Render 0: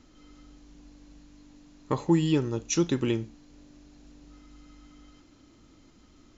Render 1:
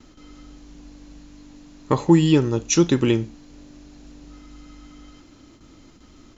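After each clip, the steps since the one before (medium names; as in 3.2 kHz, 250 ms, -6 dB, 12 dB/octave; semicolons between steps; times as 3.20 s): gate with hold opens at -48 dBFS; trim +8 dB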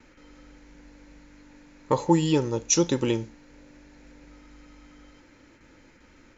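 dynamic bell 6 kHz, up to +8 dB, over -48 dBFS, Q 1; small resonant body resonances 520/890 Hz, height 12 dB, ringing for 40 ms; band noise 1.3–2.5 kHz -56 dBFS; trim -7.5 dB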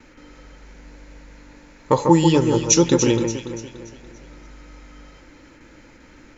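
echo whose repeats swap between lows and highs 144 ms, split 2.1 kHz, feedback 64%, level -5 dB; trim +6 dB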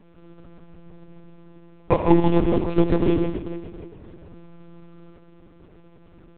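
median filter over 25 samples; on a send at -10 dB: reverberation RT60 0.60 s, pre-delay 63 ms; on the sum: monotone LPC vocoder at 8 kHz 170 Hz; trim -1 dB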